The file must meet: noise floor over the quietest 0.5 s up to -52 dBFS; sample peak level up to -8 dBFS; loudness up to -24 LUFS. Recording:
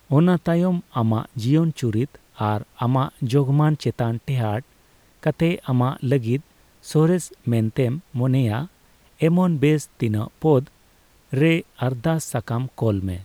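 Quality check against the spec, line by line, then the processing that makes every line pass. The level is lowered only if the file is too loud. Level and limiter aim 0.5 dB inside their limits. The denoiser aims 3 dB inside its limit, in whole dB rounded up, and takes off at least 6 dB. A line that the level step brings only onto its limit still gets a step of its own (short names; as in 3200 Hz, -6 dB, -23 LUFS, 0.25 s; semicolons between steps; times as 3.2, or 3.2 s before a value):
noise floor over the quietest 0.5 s -56 dBFS: OK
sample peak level -6.0 dBFS: fail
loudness -22.0 LUFS: fail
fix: gain -2.5 dB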